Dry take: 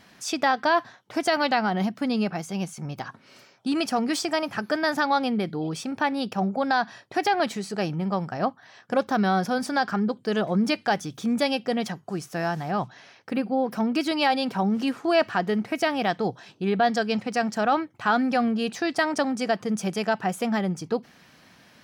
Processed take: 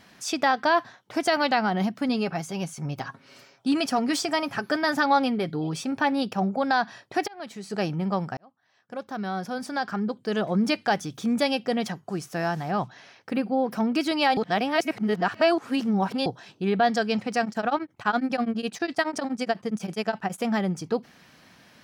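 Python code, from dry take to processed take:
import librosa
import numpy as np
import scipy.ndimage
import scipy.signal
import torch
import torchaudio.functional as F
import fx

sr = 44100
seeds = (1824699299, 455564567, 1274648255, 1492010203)

y = fx.comb(x, sr, ms=7.3, depth=0.39, at=(2.08, 6.23))
y = fx.auto_swell(y, sr, attack_ms=731.0, at=(7.26, 7.7), fade=0.02)
y = fx.tremolo_abs(y, sr, hz=12.0, at=(17.44, 20.43), fade=0.02)
y = fx.edit(y, sr, fx.fade_in_span(start_s=8.37, length_s=2.35),
    fx.reverse_span(start_s=14.37, length_s=1.89), tone=tone)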